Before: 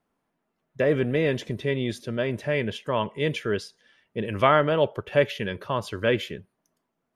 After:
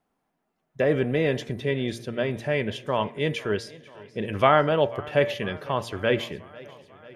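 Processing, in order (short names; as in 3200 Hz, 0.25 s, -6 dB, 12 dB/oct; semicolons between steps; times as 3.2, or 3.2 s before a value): bell 760 Hz +6.5 dB 0.21 oct; de-hum 115.9 Hz, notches 21; warbling echo 0.494 s, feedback 67%, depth 78 cents, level -21.5 dB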